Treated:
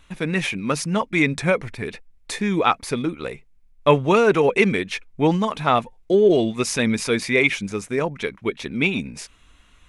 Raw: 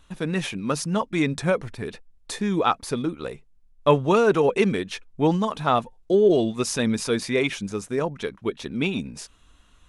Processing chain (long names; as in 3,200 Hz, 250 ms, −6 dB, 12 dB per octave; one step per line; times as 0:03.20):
parametric band 2,200 Hz +9 dB 0.5 octaves
level +2 dB